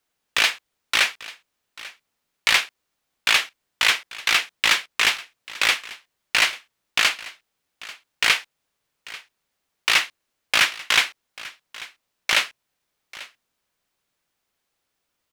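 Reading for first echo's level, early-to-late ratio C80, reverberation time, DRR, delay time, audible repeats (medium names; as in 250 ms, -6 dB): -19.0 dB, no reverb, no reverb, no reverb, 841 ms, 1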